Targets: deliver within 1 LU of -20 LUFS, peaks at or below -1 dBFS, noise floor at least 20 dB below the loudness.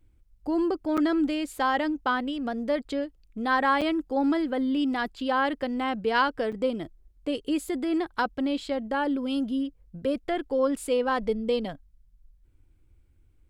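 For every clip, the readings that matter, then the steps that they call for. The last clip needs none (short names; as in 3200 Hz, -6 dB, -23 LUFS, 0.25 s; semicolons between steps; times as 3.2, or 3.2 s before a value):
dropouts 3; longest dropout 6.3 ms; loudness -27.5 LUFS; peak -11.5 dBFS; loudness target -20.0 LUFS
-> interpolate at 0.97/3.81/6.52, 6.3 ms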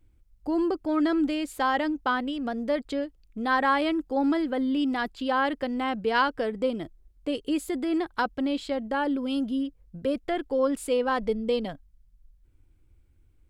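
dropouts 0; loudness -27.5 LUFS; peak -11.5 dBFS; loudness target -20.0 LUFS
-> gain +7.5 dB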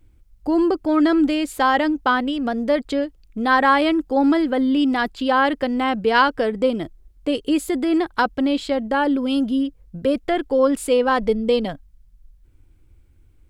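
loudness -20.0 LUFS; peak -4.0 dBFS; noise floor -54 dBFS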